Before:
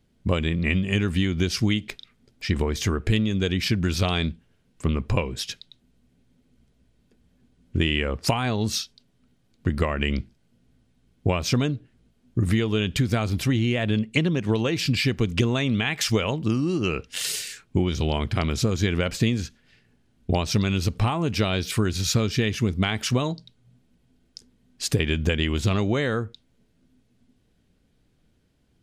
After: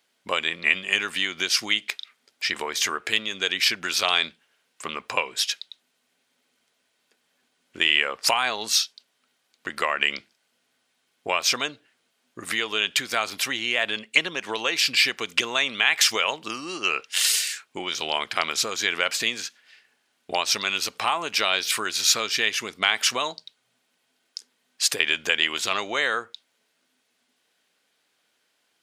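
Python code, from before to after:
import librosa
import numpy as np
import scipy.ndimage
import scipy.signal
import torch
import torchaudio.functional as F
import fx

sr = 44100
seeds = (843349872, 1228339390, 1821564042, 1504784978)

y = scipy.signal.sosfilt(scipy.signal.butter(2, 920.0, 'highpass', fs=sr, output='sos'), x)
y = y * 10.0 ** (7.0 / 20.0)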